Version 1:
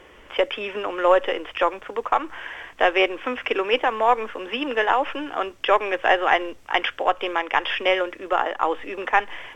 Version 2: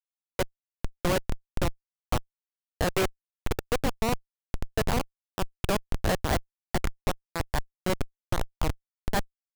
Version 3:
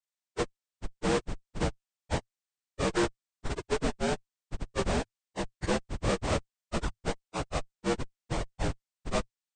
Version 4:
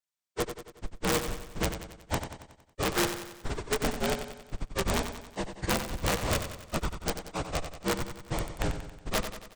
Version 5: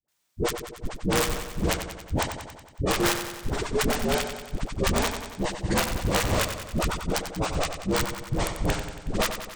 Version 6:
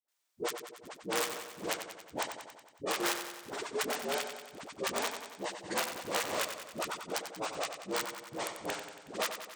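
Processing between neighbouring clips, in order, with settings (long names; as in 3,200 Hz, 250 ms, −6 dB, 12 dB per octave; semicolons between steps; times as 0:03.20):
comparator with hysteresis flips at −14.5 dBFS
partials spread apart or drawn together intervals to 80%
wrap-around overflow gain 19 dB; on a send: repeating echo 92 ms, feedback 53%, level −9 dB
all-pass dispersion highs, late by 83 ms, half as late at 490 Hz; multiband upward and downward compressor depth 40%; level +5 dB
high-pass filter 380 Hz 12 dB per octave; level −7 dB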